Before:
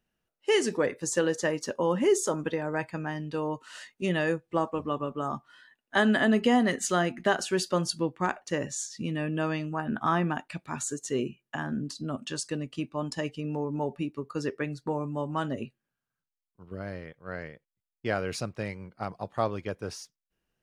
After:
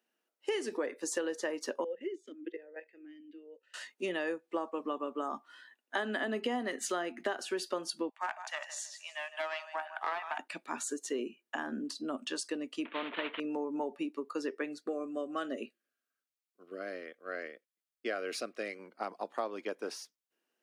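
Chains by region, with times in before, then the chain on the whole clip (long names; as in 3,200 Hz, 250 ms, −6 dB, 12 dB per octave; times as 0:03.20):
0:01.84–0:03.74: output level in coarse steps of 14 dB + formant filter swept between two vowels e-i 1.1 Hz
0:08.09–0:10.39: Chebyshev high-pass with heavy ripple 620 Hz, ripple 3 dB + repeating echo 157 ms, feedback 27%, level −14 dB + highs frequency-modulated by the lows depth 0.14 ms
0:12.85–0:13.40: variable-slope delta modulation 16 kbit/s + Butterworth band-reject 790 Hz, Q 6.5 + every bin compressed towards the loudest bin 2 to 1
0:14.80–0:18.79: Butterworth band-reject 910 Hz, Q 2.7 + low-shelf EQ 140 Hz −10 dB
whole clip: Butterworth high-pass 250 Hz 36 dB per octave; dynamic equaliser 7,000 Hz, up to −5 dB, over −50 dBFS, Q 1.6; downward compressor 4 to 1, threshold −32 dBFS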